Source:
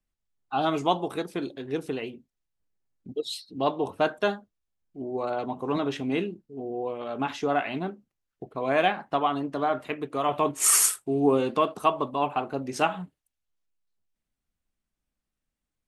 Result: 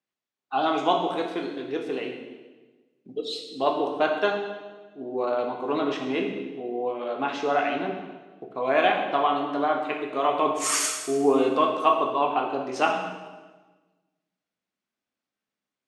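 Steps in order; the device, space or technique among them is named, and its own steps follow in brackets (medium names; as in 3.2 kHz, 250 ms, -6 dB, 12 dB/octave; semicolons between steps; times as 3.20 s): supermarket ceiling speaker (band-pass 280–5400 Hz; reverberation RT60 1.3 s, pre-delay 10 ms, DRR 1.5 dB); trim +1 dB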